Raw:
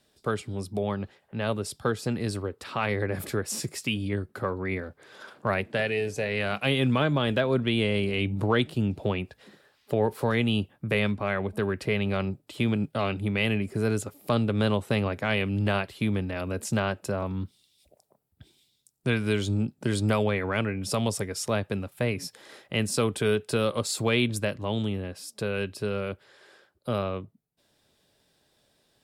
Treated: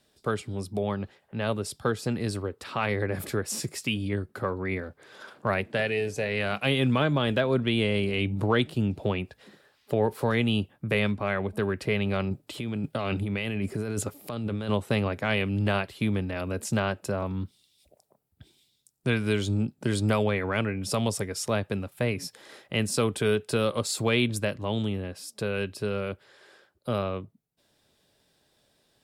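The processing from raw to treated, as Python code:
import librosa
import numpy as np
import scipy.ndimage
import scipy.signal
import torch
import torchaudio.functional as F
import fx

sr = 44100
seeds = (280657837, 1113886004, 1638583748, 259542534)

y = fx.over_compress(x, sr, threshold_db=-30.0, ratio=-1.0, at=(12.31, 14.69))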